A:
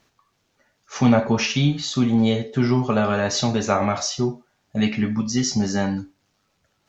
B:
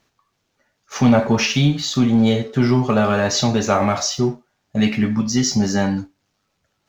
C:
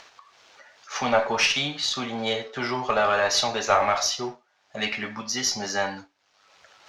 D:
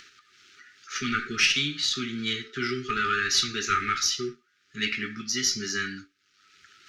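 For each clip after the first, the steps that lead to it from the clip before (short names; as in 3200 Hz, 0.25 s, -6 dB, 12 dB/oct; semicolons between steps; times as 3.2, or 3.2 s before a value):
sample leveller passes 1
three-band isolator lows -22 dB, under 510 Hz, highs -19 dB, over 6700 Hz; upward compressor, threshold -36 dBFS; added harmonics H 4 -24 dB, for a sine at -6 dBFS
brick-wall FIR band-stop 430–1200 Hz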